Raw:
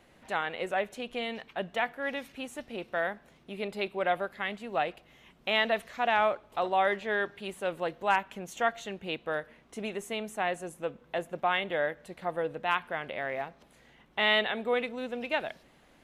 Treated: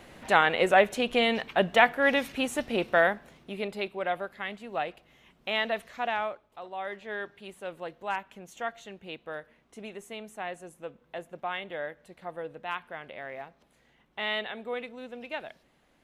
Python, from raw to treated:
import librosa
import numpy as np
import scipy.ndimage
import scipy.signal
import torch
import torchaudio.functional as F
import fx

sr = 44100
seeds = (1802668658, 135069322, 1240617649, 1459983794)

y = fx.gain(x, sr, db=fx.line((2.85, 10.0), (4.0, -2.0), (6.03, -2.0), (6.6, -13.0), (7.13, -6.0)))